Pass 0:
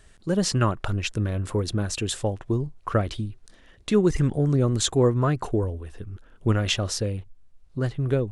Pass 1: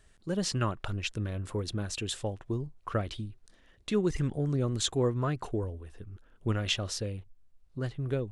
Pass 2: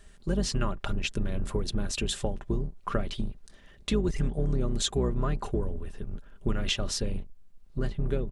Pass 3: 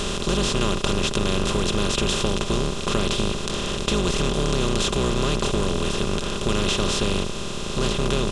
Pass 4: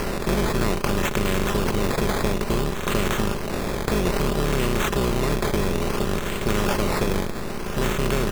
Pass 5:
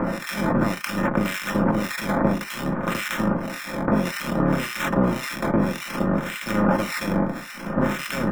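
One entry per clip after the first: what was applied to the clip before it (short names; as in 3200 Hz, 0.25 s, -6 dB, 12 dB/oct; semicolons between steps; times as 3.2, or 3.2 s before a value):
dynamic EQ 3200 Hz, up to +4 dB, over -44 dBFS, Q 1; gain -8 dB
octaver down 2 oct, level +3 dB; comb 5 ms, depth 40%; compressor 2.5:1, threshold -32 dBFS, peak gain reduction 10 dB; gain +5.5 dB
per-bin compression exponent 0.2; gain -1.5 dB
decimation with a swept rate 12×, swing 60% 0.59 Hz
harmonic tremolo 1.8 Hz, depth 100%, crossover 1500 Hz; reverb, pre-delay 3 ms, DRR 4 dB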